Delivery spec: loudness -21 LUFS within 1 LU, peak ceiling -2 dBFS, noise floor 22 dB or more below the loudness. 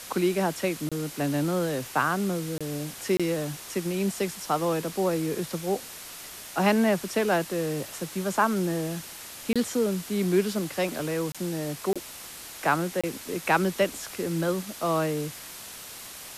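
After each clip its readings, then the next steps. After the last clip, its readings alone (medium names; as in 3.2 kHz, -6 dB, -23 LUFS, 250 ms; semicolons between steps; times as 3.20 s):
dropouts 7; longest dropout 26 ms; noise floor -42 dBFS; noise floor target -50 dBFS; loudness -28.0 LUFS; peak level -10.5 dBFS; loudness target -21.0 LUFS
-> interpolate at 0.89/2.58/3.17/9.53/11.32/11.93/13.01 s, 26 ms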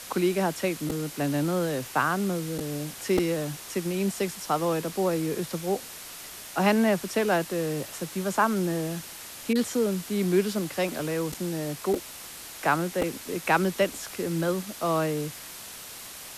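dropouts 0; noise floor -42 dBFS; noise floor target -50 dBFS
-> noise reduction 8 dB, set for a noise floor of -42 dBFS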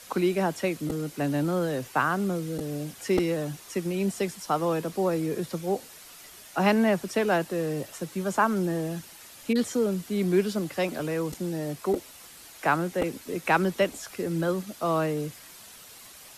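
noise floor -48 dBFS; noise floor target -50 dBFS
-> noise reduction 6 dB, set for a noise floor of -48 dBFS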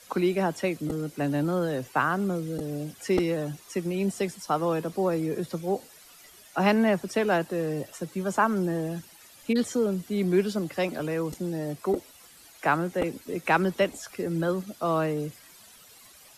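noise floor -53 dBFS; loudness -28.0 LUFS; peak level -10.5 dBFS; loudness target -21.0 LUFS
-> trim +7 dB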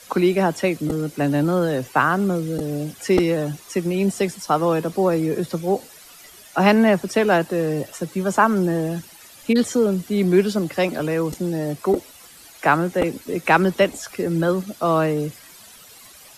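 loudness -21.0 LUFS; peak level -3.5 dBFS; noise floor -46 dBFS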